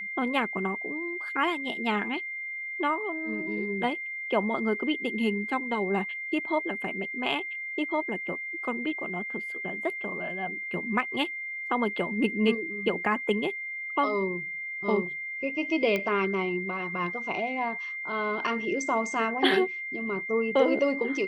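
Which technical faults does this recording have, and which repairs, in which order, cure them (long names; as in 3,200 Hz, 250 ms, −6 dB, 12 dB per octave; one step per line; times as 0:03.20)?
whistle 2,100 Hz −33 dBFS
0:15.96: click −15 dBFS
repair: click removal
notch filter 2,100 Hz, Q 30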